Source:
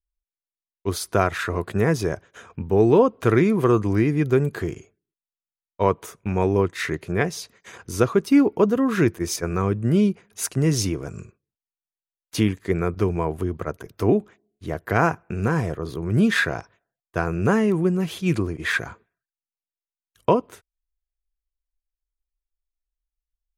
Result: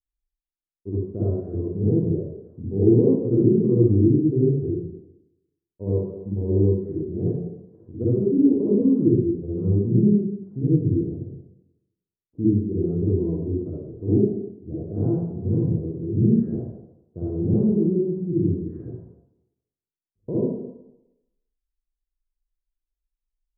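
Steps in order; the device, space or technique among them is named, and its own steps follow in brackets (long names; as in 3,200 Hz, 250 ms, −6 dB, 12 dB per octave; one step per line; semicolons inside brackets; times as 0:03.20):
next room (low-pass filter 390 Hz 24 dB per octave; convolution reverb RT60 0.90 s, pre-delay 45 ms, DRR −8.5 dB)
level −7.5 dB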